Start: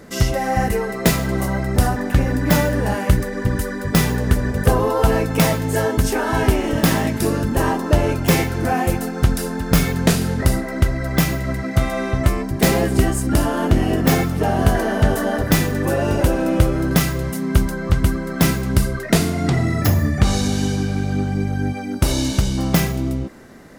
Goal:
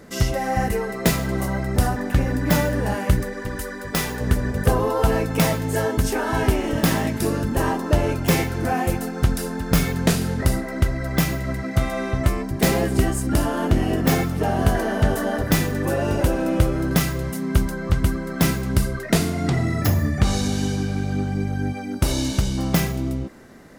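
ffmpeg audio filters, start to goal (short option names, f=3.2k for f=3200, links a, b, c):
-filter_complex "[0:a]asettb=1/sr,asplit=3[a][b][c];[a]atrim=end=3.334[d];[b]atrim=start=3.33:end=4.21,asetpts=PTS-STARTPTS,afade=t=in:d=0.004:c=qsin,afade=t=out:st=0.876:d=0.004:c=qsin,equalizer=f=110:w=0.48:g=-10[e];[c]atrim=start=4.206[f];[d][e]acrossfade=d=0.004:c1=hsin:c2=qsin[g];[g][f]acrossfade=d=0.004:c1=qsin:c2=hsin,volume=-3dB"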